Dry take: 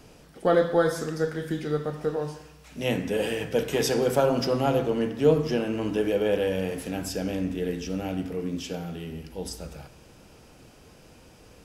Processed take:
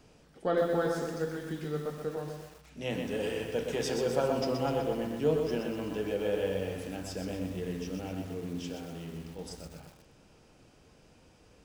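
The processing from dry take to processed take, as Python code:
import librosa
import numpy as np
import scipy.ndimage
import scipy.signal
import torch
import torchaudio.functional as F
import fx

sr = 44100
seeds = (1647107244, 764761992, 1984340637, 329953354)

y = fx.peak_eq(x, sr, hz=12000.0, db=-12.5, octaves=0.32)
y = fx.echo_filtered(y, sr, ms=113, feedback_pct=34, hz=890.0, wet_db=-9.5)
y = fx.echo_crushed(y, sr, ms=125, feedback_pct=55, bits=7, wet_db=-5.5)
y = y * 10.0 ** (-8.0 / 20.0)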